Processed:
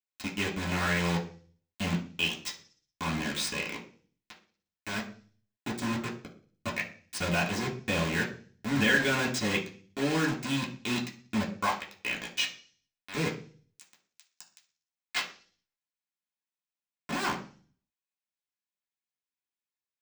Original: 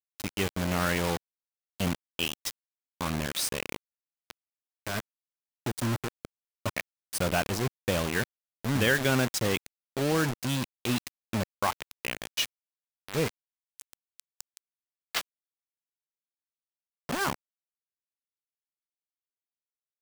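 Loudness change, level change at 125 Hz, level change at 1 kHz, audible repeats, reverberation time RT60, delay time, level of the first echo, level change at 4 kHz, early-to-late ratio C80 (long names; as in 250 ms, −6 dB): −0.5 dB, −2.5 dB, −0.5 dB, no echo audible, 0.40 s, no echo audible, no echo audible, 0.0 dB, 15.5 dB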